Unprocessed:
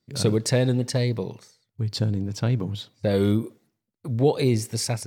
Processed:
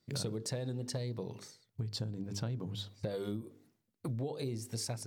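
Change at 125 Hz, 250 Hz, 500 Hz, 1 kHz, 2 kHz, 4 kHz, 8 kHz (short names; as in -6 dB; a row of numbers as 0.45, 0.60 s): -14.0, -15.5, -16.0, -15.0, -16.5, -10.5, -11.0 dB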